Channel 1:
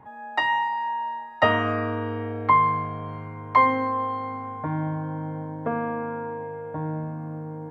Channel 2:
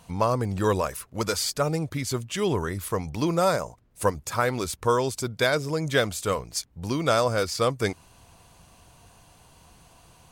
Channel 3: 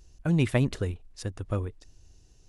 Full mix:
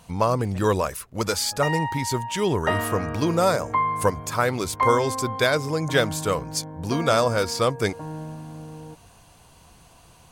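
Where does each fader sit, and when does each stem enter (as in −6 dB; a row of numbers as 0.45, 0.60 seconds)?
−4.5, +2.0, −19.5 decibels; 1.25, 0.00, 0.00 seconds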